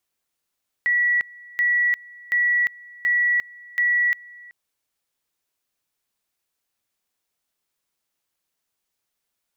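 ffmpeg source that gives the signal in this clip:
-f lavfi -i "aevalsrc='pow(10,(-16.5-24*gte(mod(t,0.73),0.35))/20)*sin(2*PI*1940*t)':d=3.65:s=44100"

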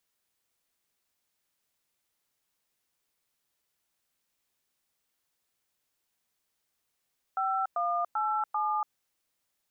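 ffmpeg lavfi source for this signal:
-f lavfi -i "aevalsrc='0.0355*clip(min(mod(t,0.391),0.287-mod(t,0.391))/0.002,0,1)*(eq(floor(t/0.391),0)*(sin(2*PI*770*mod(t,0.391))+sin(2*PI*1336*mod(t,0.391)))+eq(floor(t/0.391),1)*(sin(2*PI*697*mod(t,0.391))+sin(2*PI*1209*mod(t,0.391)))+eq(floor(t/0.391),2)*(sin(2*PI*852*mod(t,0.391))+sin(2*PI*1336*mod(t,0.391)))+eq(floor(t/0.391),3)*(sin(2*PI*852*mod(t,0.391))+sin(2*PI*1209*mod(t,0.391))))':d=1.564:s=44100"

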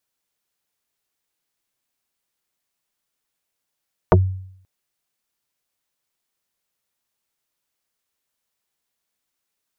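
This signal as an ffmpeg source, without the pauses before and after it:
-f lavfi -i "aevalsrc='0.473*pow(10,-3*t/0.67)*sin(2*PI*94*t+4.9*pow(10,-3*t/0.1)*sin(2*PI*2.88*94*t))':d=0.53:s=44100"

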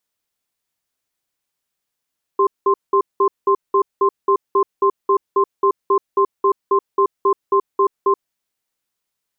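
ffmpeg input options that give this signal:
-f lavfi -i "aevalsrc='0.2*(sin(2*PI*395*t)+sin(2*PI*1050*t))*clip(min(mod(t,0.27),0.08-mod(t,0.27))/0.005,0,1)':d=5.82:s=44100"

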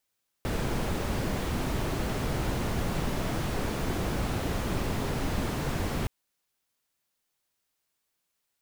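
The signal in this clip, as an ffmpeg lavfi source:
-f lavfi -i "anoisesrc=c=brown:a=0.166:d=5.62:r=44100:seed=1"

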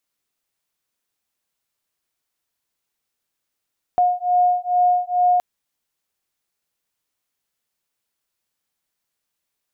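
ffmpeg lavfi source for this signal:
-f lavfi -i "aevalsrc='0.126*(sin(2*PI*717*t)+sin(2*PI*719.3*t))':d=1.42:s=44100"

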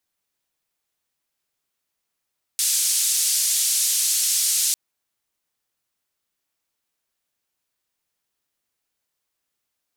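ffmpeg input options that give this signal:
-f lavfi -i "anoisesrc=c=white:d=2.15:r=44100:seed=1,highpass=f=5400,lowpass=f=9900,volume=-9.3dB"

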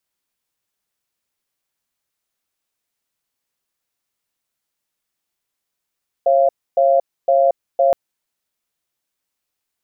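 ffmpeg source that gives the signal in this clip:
-f lavfi -i "aevalsrc='0.211*(sin(2*PI*544*t)+sin(2*PI*687*t))*clip(min(mod(t,0.51),0.23-mod(t,0.51))/0.005,0,1)':d=1.67:s=44100"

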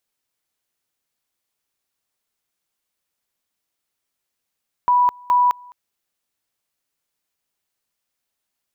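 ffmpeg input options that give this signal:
-f lavfi -i "aevalsrc='pow(10,(-12-27*gte(mod(t,0.42),0.21))/20)*sin(2*PI*983*t)':d=0.84:s=44100"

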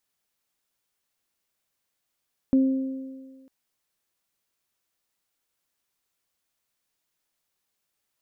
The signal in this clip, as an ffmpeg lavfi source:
-f lavfi -i "aevalsrc='0.188*pow(10,-3*t/1.56)*sin(2*PI*265*t)+0.0316*pow(10,-3*t/1.84)*sin(2*PI*530*t)':d=0.95:s=44100"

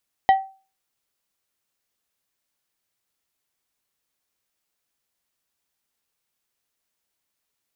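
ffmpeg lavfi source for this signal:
-f lavfi -i "aevalsrc='0.376*pow(10,-3*t/0.35)*sin(2*PI*772*t)+0.112*pow(10,-3*t/0.184)*sin(2*PI*1930*t)+0.0335*pow(10,-3*t/0.133)*sin(2*PI*3088*t)+0.01*pow(10,-3*t/0.113)*sin(2*PI*3860*t)+0.00299*pow(10,-3*t/0.094)*sin(2*PI*5018*t)':d=0.89:s=44100"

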